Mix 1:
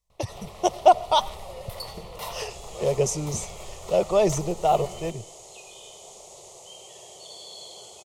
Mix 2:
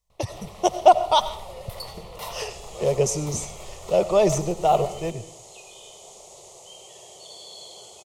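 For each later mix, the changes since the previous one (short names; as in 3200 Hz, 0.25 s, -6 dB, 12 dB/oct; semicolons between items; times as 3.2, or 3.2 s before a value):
speech: send +10.5 dB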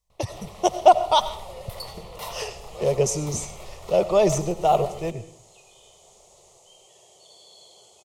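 second sound -8.5 dB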